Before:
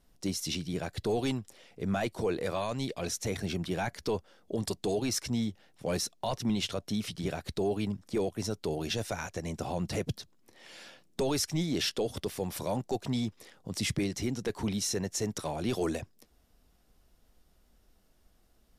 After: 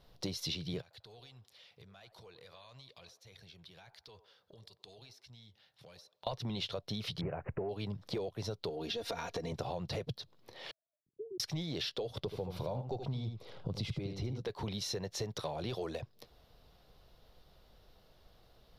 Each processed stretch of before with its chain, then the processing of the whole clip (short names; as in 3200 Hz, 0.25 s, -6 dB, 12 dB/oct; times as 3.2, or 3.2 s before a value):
0.81–6.27 passive tone stack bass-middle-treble 5-5-5 + compressor 12:1, threshold -58 dBFS + band-limited delay 94 ms, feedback 35%, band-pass 690 Hz, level -11 dB
7.21–7.69 G.711 law mismatch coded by mu + LPF 1700 Hz + careless resampling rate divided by 8×, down none, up filtered
8.69–9.52 bell 320 Hz +10 dB 0.5 oct + comb 4.3 ms, depth 93% + compressor, threshold -33 dBFS
10.71–11.4 sine-wave speech + inverse Chebyshev low-pass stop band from 800 Hz, stop band 60 dB
12.23–14.41 tilt -2 dB/oct + notch 1800 Hz, Q 5.9 + echo 78 ms -8.5 dB
whole clip: graphic EQ 125/250/500/1000/4000/8000 Hz +9/-6/+8/+5/+12/-12 dB; compressor 10:1, threshold -36 dBFS; gain +1 dB